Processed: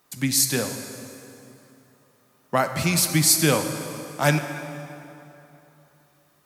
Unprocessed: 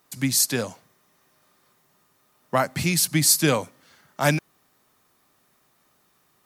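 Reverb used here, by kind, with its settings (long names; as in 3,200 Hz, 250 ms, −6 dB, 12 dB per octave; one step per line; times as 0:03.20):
dense smooth reverb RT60 3.1 s, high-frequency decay 0.7×, DRR 6.5 dB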